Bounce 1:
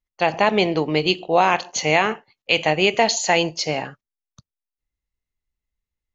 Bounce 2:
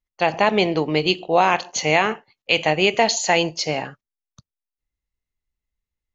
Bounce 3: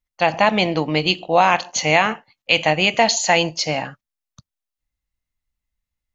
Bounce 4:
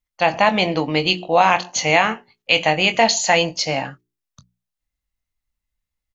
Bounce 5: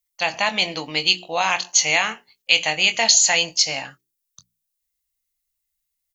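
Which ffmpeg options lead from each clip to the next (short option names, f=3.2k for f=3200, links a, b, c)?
-af anull
-af "equalizer=f=400:t=o:w=0.25:g=-14,volume=2.5dB"
-filter_complex "[0:a]bandreject=f=60:t=h:w=6,bandreject=f=120:t=h:w=6,bandreject=f=180:t=h:w=6,bandreject=f=240:t=h:w=6,bandreject=f=300:t=h:w=6,bandreject=f=360:t=h:w=6,bandreject=f=420:t=h:w=6,asplit=2[a][b];[b]adelay=22,volume=-11dB[c];[a][c]amix=inputs=2:normalize=0"
-af "crystalizer=i=10:c=0,volume=-12dB"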